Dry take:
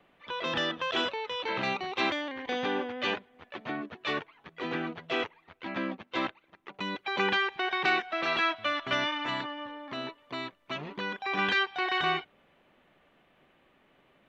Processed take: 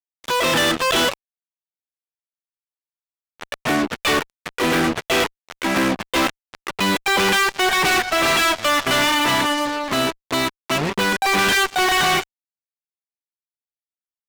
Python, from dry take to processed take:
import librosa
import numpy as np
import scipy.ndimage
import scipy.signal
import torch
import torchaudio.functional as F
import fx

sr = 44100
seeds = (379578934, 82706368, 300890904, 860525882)

y = fx.gate_flip(x, sr, shuts_db=-31.0, range_db=-33, at=(1.1, 3.6))
y = fx.fuzz(y, sr, gain_db=41.0, gate_db=-44.0)
y = y * 10.0 ** (-2.5 / 20.0)